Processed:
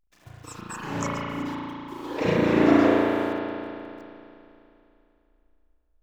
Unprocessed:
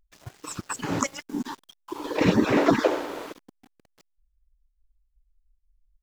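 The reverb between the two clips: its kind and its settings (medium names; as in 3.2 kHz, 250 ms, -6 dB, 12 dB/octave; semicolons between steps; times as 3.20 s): spring tank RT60 2.8 s, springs 35 ms, chirp 50 ms, DRR -7 dB; trim -7 dB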